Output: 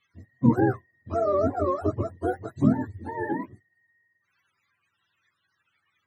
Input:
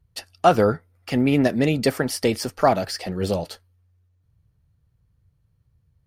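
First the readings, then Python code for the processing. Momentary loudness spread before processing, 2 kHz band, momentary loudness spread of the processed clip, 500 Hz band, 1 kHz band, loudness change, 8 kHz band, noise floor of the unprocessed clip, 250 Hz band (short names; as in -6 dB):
10 LU, -9.0 dB, 11 LU, -5.5 dB, -7.0 dB, -4.5 dB, under -25 dB, -66 dBFS, -2.5 dB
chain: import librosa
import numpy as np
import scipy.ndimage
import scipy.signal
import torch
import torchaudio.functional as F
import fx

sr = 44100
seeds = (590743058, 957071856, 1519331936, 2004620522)

y = fx.octave_mirror(x, sr, pivot_hz=410.0)
y = y * librosa.db_to_amplitude(-3.0)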